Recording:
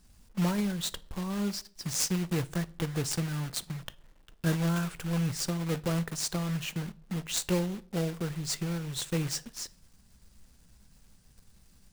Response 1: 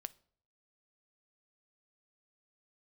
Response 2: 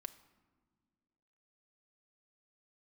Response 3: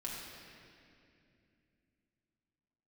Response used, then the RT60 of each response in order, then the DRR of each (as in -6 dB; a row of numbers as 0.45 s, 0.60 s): 1; 0.55 s, no single decay rate, 2.5 s; 15.0 dB, 6.5 dB, -5.0 dB